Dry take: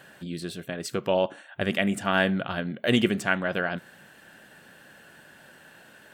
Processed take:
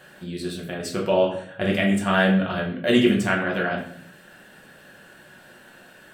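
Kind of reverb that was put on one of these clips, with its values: shoebox room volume 86 m³, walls mixed, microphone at 0.99 m; gain -1 dB

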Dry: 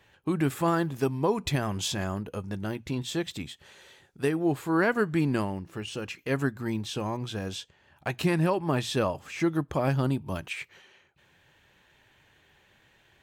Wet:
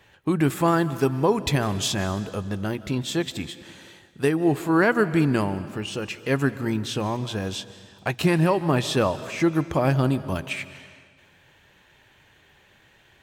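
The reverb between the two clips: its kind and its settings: digital reverb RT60 1.7 s, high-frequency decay 0.95×, pre-delay 0.11 s, DRR 14.5 dB; gain +5 dB

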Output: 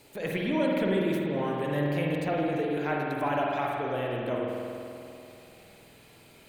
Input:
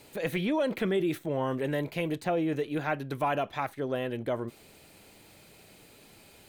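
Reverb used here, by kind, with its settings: spring tank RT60 2.7 s, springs 48 ms, chirp 35 ms, DRR -2.5 dB; gain -2.5 dB

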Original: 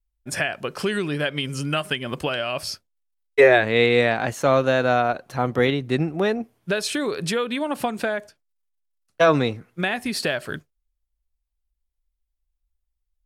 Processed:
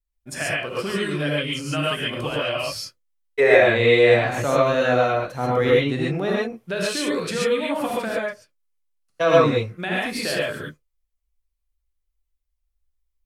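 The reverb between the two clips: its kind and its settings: non-linear reverb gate 0.16 s rising, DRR -5.5 dB; gain -5.5 dB

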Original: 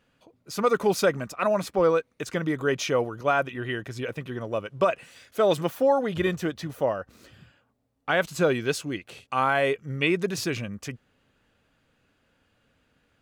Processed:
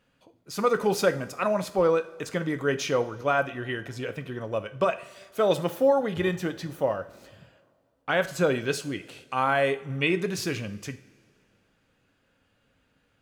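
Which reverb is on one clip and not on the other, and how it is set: two-slope reverb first 0.45 s, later 2.4 s, from -19 dB, DRR 9 dB; gain -1.5 dB

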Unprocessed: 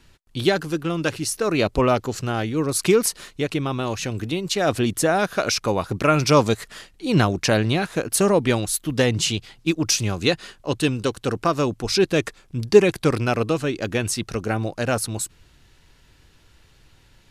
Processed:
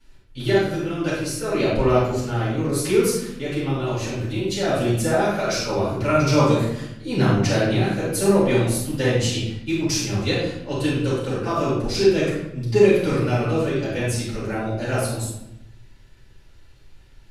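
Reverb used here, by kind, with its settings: shoebox room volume 260 m³, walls mixed, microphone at 7.1 m; gain -17.5 dB

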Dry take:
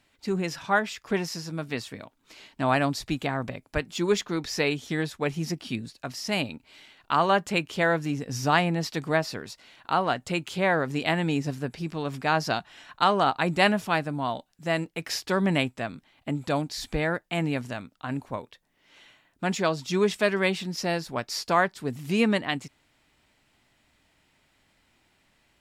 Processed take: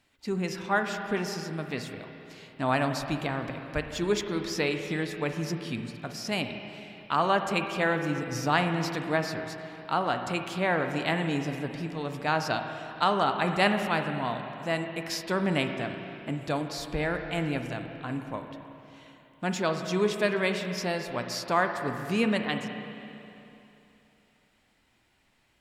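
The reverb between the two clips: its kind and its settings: spring tank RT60 3 s, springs 33/50/54 ms, chirp 60 ms, DRR 5.5 dB; gain -3 dB

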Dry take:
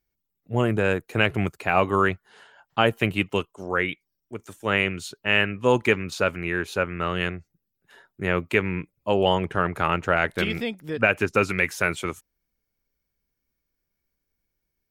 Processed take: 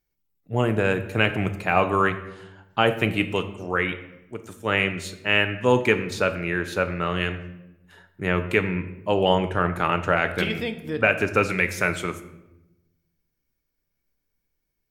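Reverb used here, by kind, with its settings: shoebox room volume 350 m³, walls mixed, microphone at 0.44 m

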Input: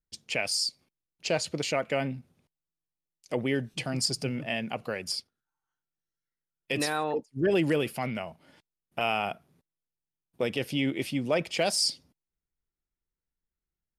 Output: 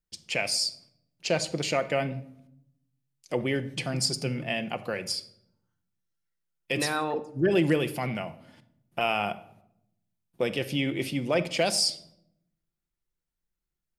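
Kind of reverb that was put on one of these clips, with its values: shoebox room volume 1900 m³, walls furnished, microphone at 0.84 m; gain +1 dB

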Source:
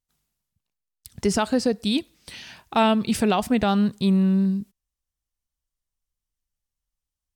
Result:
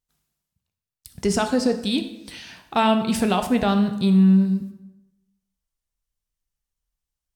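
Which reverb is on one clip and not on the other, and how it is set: plate-style reverb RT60 0.94 s, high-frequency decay 0.75×, DRR 6.5 dB

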